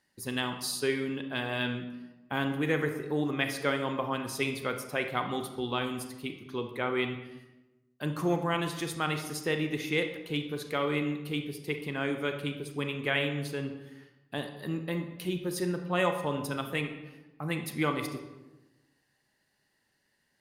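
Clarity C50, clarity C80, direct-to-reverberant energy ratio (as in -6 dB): 8.0 dB, 10.5 dB, 6.0 dB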